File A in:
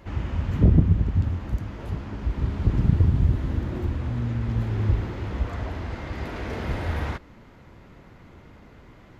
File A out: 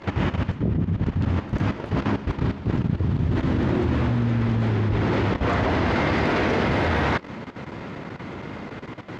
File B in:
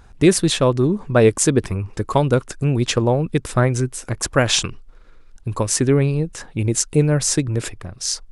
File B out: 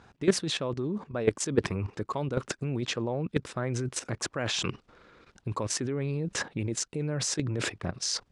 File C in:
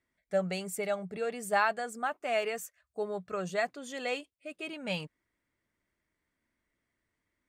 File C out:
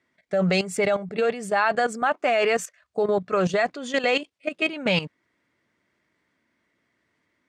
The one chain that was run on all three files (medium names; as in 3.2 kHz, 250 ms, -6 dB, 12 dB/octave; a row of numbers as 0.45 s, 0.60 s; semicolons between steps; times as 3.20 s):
reverse; compression 10:1, threshold -26 dBFS; reverse; band-pass 130–5600 Hz; level held to a coarse grid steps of 13 dB; loudspeaker Doppler distortion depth 0.11 ms; peak normalisation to -9 dBFS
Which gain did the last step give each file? +17.5 dB, +8.5 dB, +18.5 dB